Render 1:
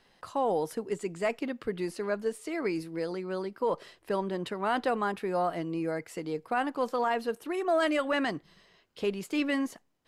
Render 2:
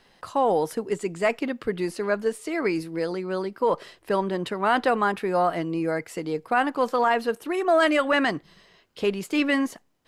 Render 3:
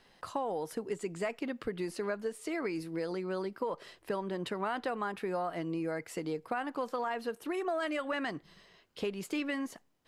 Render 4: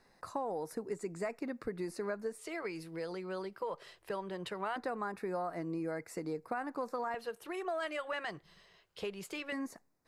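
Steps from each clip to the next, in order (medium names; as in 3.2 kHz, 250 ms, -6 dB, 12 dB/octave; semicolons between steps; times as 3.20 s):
dynamic bell 1.6 kHz, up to +3 dB, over -38 dBFS, Q 0.73; trim +5.5 dB
compression, threshold -27 dBFS, peak gain reduction 10.5 dB; trim -4.5 dB
LFO notch square 0.21 Hz 260–3100 Hz; trim -2.5 dB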